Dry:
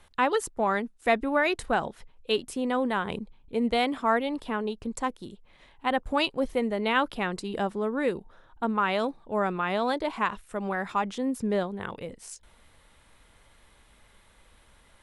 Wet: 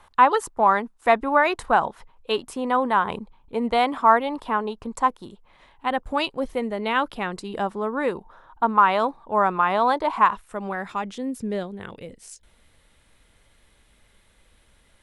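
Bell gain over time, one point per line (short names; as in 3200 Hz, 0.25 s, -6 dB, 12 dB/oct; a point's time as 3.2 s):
bell 1000 Hz 1.1 oct
5.3 s +12 dB
5.9 s +3.5 dB
7.4 s +3.5 dB
8.18 s +12.5 dB
10.22 s +12.5 dB
10.59 s +4 dB
11.29 s -5.5 dB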